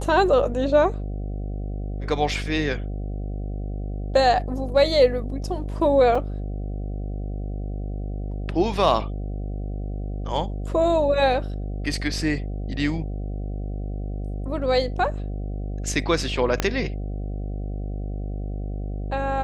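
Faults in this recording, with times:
buzz 50 Hz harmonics 15 -29 dBFS
6.15 gap 4 ms
16.6 pop -6 dBFS

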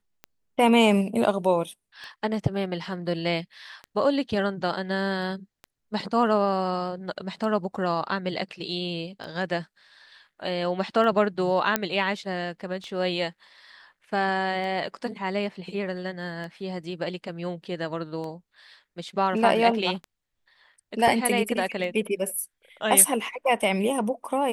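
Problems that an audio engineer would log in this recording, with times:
tick 33 1/3 rpm -24 dBFS
11.76 pop -5 dBFS

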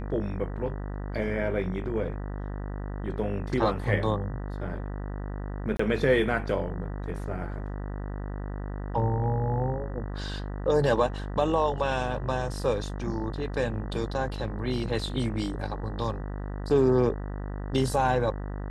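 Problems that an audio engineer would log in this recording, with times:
buzz 50 Hz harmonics 39 -34 dBFS
5.77–5.79 gap 24 ms

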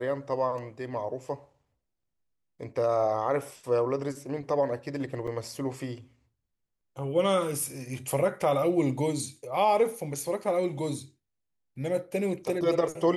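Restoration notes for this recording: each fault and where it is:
5.27–5.28 gap 5 ms

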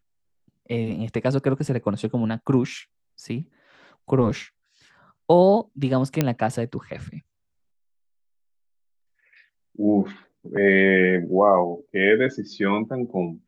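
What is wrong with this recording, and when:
6.21 pop -6 dBFS

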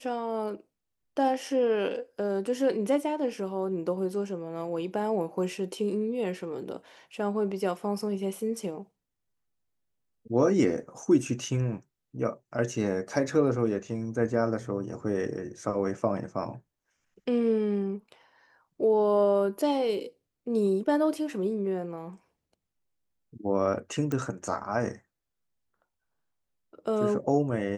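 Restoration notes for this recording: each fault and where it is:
24.12 pop -19 dBFS

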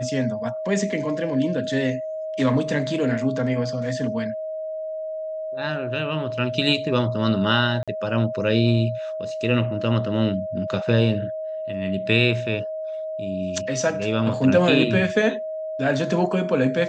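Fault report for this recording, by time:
tone 630 Hz -27 dBFS
7.83–7.88 gap 46 ms

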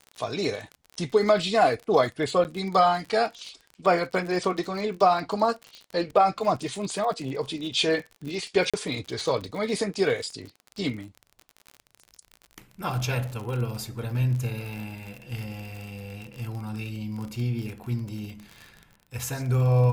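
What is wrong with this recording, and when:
crackle 40/s -33 dBFS
2.44–2.45 gap 9.4 ms
8.7–8.74 gap 36 ms

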